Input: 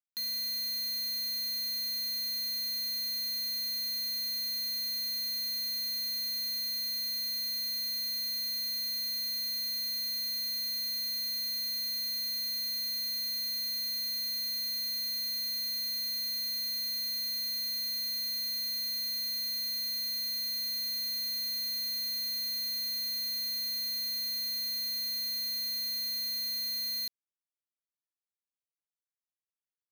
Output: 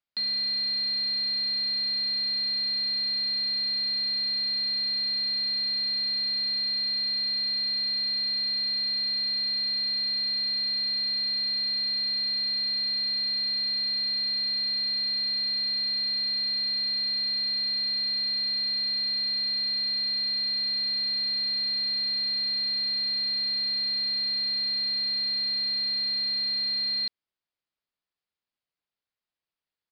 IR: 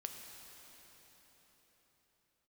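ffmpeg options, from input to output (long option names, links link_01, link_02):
-af "aresample=11025,aresample=44100,volume=7dB"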